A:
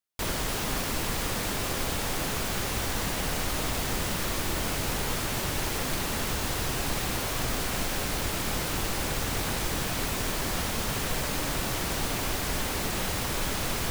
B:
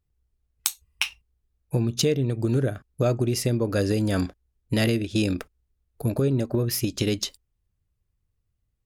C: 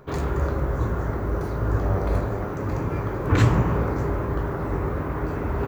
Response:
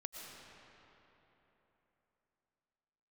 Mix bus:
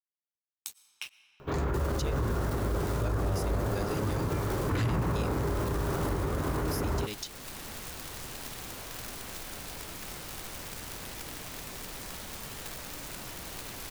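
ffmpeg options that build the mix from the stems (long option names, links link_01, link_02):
-filter_complex "[0:a]aeval=exprs='(mod(13.3*val(0)+1,2)-1)/13.3':channel_layout=same,adelay=1550,volume=-11.5dB[link_01];[1:a]tiltshelf=frequency=670:gain=-5,acrusher=bits=6:mix=0:aa=0.000001,aeval=exprs='sgn(val(0))*max(abs(val(0))-0.0178,0)':channel_layout=same,volume=-12.5dB,asplit=3[link_02][link_03][link_04];[link_03]volume=-16dB[link_05];[2:a]asoftclip=type=tanh:threshold=-12dB,adelay=1400,volume=-1dB[link_06];[link_04]apad=whole_len=681661[link_07];[link_01][link_07]sidechaincompress=threshold=-37dB:ratio=8:attack=26:release=699[link_08];[3:a]atrim=start_sample=2205[link_09];[link_05][link_09]afir=irnorm=-1:irlink=0[link_10];[link_08][link_02][link_06][link_10]amix=inputs=4:normalize=0,alimiter=limit=-22dB:level=0:latency=1:release=42"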